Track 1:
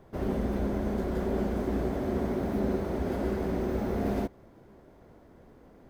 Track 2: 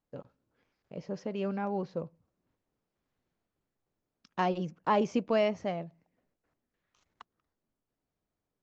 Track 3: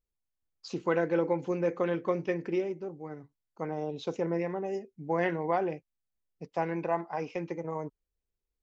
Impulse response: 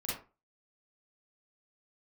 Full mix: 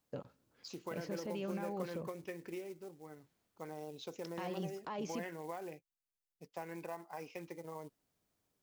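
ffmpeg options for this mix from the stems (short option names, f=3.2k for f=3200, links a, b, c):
-filter_complex "[1:a]highpass=56,acompressor=threshold=-41dB:ratio=2.5,volume=2.5dB,asplit=3[a][b][c];[a]atrim=end=5.27,asetpts=PTS-STARTPTS,afade=t=out:st=5.266:d=0.004:c=hsin[d];[b]atrim=start=5.27:end=7.35,asetpts=PTS-STARTPTS,volume=0[e];[c]atrim=start=7.35,asetpts=PTS-STARTPTS,afade=t=in:d=0.004:c=hsin[f];[d][e][f]concat=n=3:v=0:a=1[g];[2:a]lowshelf=f=270:g=-3,acompressor=threshold=-29dB:ratio=12,acrusher=bits=6:mode=log:mix=0:aa=0.000001,volume=-10.5dB[h];[g]alimiter=level_in=9dB:limit=-24dB:level=0:latency=1:release=22,volume=-9dB,volume=0dB[i];[h][i]amix=inputs=2:normalize=0,highshelf=f=3k:g=8"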